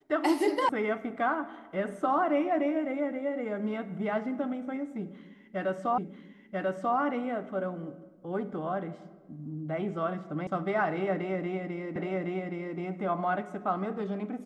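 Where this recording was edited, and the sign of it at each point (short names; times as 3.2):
0.69 sound cut off
5.98 repeat of the last 0.99 s
10.47 sound cut off
11.96 repeat of the last 0.82 s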